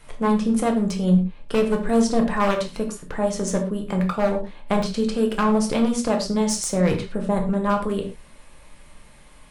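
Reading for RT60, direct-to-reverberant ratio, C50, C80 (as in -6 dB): no single decay rate, 2.5 dB, 9.5 dB, 13.5 dB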